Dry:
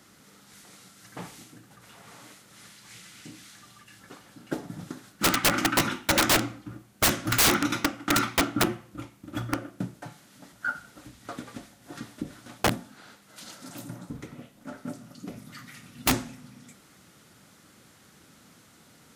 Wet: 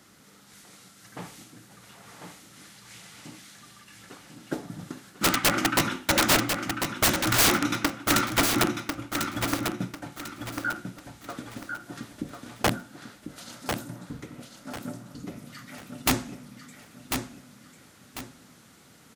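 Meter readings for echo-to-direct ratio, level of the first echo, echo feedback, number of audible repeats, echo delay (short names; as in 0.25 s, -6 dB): -5.5 dB, -6.0 dB, 33%, 4, 1.046 s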